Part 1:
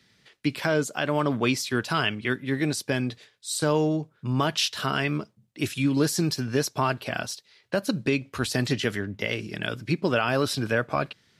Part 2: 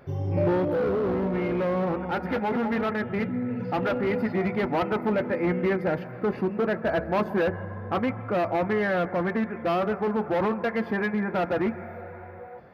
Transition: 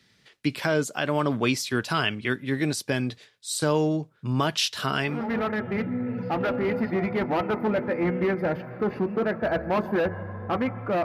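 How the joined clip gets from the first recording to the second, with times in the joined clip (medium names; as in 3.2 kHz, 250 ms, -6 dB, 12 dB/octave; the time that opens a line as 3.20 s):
part 1
5.18 s: go over to part 2 from 2.60 s, crossfade 0.36 s linear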